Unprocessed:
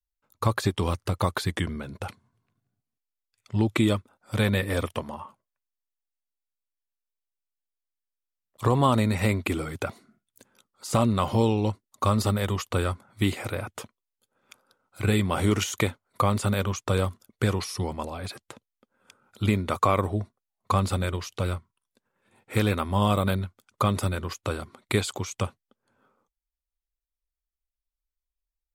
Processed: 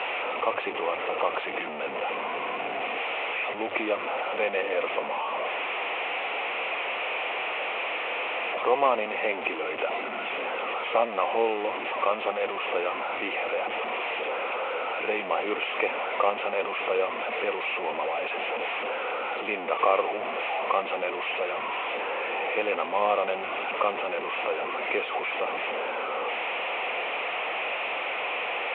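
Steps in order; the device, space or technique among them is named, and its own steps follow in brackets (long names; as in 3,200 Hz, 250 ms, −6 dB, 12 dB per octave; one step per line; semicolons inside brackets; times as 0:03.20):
digital answering machine (band-pass filter 310–3,400 Hz; linear delta modulator 16 kbit/s, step −24.5 dBFS; loudspeaker in its box 470–3,300 Hz, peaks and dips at 490 Hz +7 dB, 730 Hz +6 dB, 1,600 Hz −9 dB, 2,500 Hz +7 dB)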